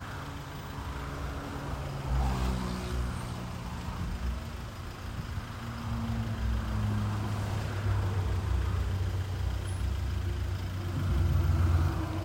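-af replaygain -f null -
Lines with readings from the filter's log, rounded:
track_gain = +19.0 dB
track_peak = 0.106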